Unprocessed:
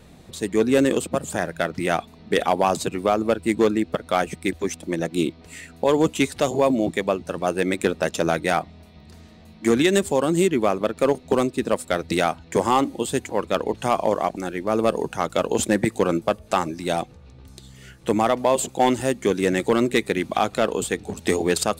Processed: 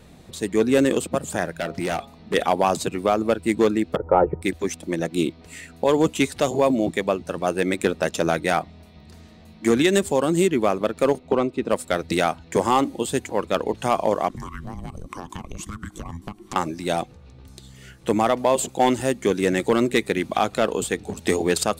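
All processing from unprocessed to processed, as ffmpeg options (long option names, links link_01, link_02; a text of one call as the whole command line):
ffmpeg -i in.wav -filter_complex "[0:a]asettb=1/sr,asplit=3[link_01][link_02][link_03];[link_01]atrim=end=1.604[link_04];[link_02]atrim=start=1.6:end=2.34,asetpts=PTS-STARTPTS,afade=type=in:duration=0.004:curve=qsin,afade=type=out:start_time=0.736:duration=0.004:curve=qsin,volume=20dB,asoftclip=hard,volume=-20dB,bandreject=frequency=136.9:width_type=h:width=4,bandreject=frequency=273.8:width_type=h:width=4,bandreject=frequency=410.7:width_type=h:width=4,bandreject=frequency=547.6:width_type=h:width=4,bandreject=frequency=684.5:width_type=h:width=4,bandreject=frequency=821.4:width_type=h:width=4,bandreject=frequency=958.3:width_type=h:width=4,bandreject=frequency=1095.2:width_type=h:width=4,bandreject=frequency=1232.1:width_type=h:width=4[link_05];[link_03]atrim=start=2.336[link_06];[link_04][link_05]acrossfade=duration=0.004:curve1=hsin:curve2=qsin[link_07];[link_07][link_06]acrossfade=duration=0.004:curve1=qsin:curve2=hsin,asettb=1/sr,asplit=3[link_08][link_09][link_10];[link_08]atrim=end=3.964[link_11];[link_09]atrim=start=3.96:end=4.42,asetpts=PTS-STARTPTS,afade=type=in:duration=0.004:curve=qsin,afade=type=out:start_time=0.456:duration=0.004:curve=qsin,lowpass=frequency=1000:width=0.5412,lowpass=frequency=1000:width=1.3066,aecho=1:1:2.2:0.84,atrim=end_sample=20286,acontrast=64[link_12];[link_10]atrim=start=4.416[link_13];[link_11][link_12]acrossfade=duration=0.004:curve1=hsin:curve2=qsin[link_14];[link_14][link_13]acrossfade=duration=0.004:curve1=qsin:curve2=hsin,asettb=1/sr,asplit=3[link_15][link_16][link_17];[link_15]atrim=end=11.194[link_18];[link_16]atrim=start=11.19:end=11.7,asetpts=PTS-STARTPTS,afade=type=in:duration=0.004:curve=qsin,afade=type=out:start_time=0.506:duration=0.004:curve=qsin,bandreject=frequency=1700:width=5.7,acrossover=split=7100[link_19][link_20];[link_20]acompressor=threshold=-54dB:ratio=4:attack=1:release=60[link_21];[link_19][link_21]amix=inputs=2:normalize=0,bass=frequency=250:gain=-3,treble=frequency=4000:gain=-13[link_22];[link_17]atrim=start=11.696[link_23];[link_18][link_22]acrossfade=duration=0.004:curve1=hsin:curve2=qsin[link_24];[link_24][link_23]acrossfade=duration=0.004:curve1=qsin:curve2=hsin,asettb=1/sr,asplit=3[link_25][link_26][link_27];[link_25]atrim=end=14.284[link_28];[link_26]atrim=start=14.28:end=16.56,asetpts=PTS-STARTPTS,afade=type=in:duration=0.004:curve=qsin,afade=type=out:start_time=2.276:duration=0.004:curve=qsin,afreqshift=-420,equalizer=frequency=1100:width=4.5:gain=13.5,acompressor=threshold=-29dB:ratio=12:attack=3.2:release=140:knee=1:detection=peak[link_29];[link_27]atrim=start=16.556[link_30];[link_28][link_29]acrossfade=duration=0.004:curve1=hsin:curve2=qsin[link_31];[link_31][link_30]acrossfade=duration=0.004:curve1=qsin:curve2=hsin" out.wav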